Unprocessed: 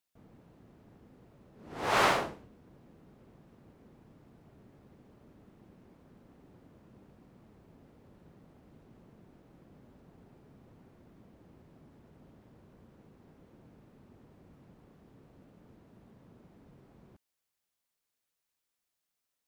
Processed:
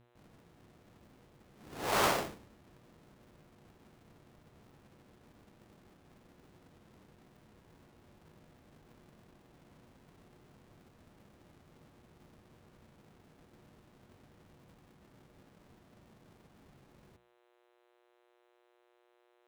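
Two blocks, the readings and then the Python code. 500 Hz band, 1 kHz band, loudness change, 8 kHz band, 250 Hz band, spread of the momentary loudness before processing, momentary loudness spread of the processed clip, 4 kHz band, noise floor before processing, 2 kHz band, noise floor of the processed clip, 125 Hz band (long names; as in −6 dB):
−2.5 dB, −4.0 dB, −3.0 dB, +2.5 dB, −2.0 dB, 17 LU, 17 LU, −2.0 dB, below −85 dBFS, −5.0 dB, −71 dBFS, −2.0 dB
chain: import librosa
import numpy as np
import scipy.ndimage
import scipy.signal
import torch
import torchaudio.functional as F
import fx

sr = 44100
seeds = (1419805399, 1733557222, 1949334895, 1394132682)

y = fx.halfwave_hold(x, sr)
y = fx.dmg_buzz(y, sr, base_hz=120.0, harmonics=34, level_db=-55.0, tilt_db=-7, odd_only=False)
y = fx.hum_notches(y, sr, base_hz=60, count=4)
y = y * 10.0 ** (-7.5 / 20.0)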